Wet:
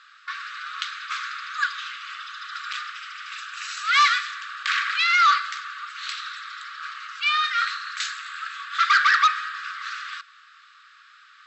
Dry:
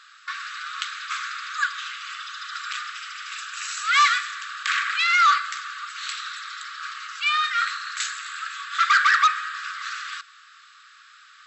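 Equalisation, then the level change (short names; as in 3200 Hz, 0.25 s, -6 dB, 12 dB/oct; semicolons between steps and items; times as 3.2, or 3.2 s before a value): air absorption 110 m; dynamic EQ 5100 Hz, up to +6 dB, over -40 dBFS, Q 0.95; 0.0 dB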